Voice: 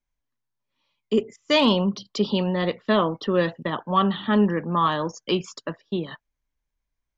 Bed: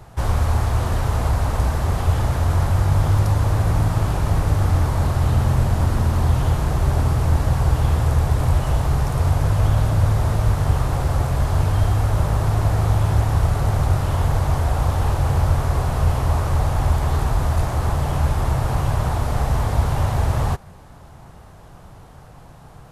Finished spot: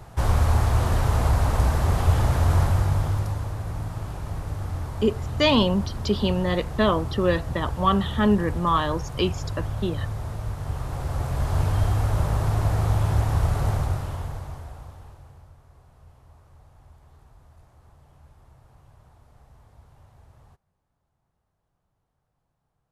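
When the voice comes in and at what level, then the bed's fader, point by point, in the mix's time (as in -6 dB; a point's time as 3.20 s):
3.90 s, -0.5 dB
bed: 2.59 s -1 dB
3.55 s -12.5 dB
10.58 s -12.5 dB
11.59 s -4 dB
13.70 s -4 dB
15.56 s -33.5 dB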